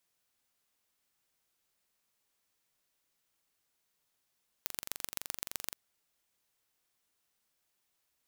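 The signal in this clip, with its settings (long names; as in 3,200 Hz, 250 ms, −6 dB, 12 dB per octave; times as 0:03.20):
impulse train 23.4 per second, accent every 3, −7 dBFS 1.11 s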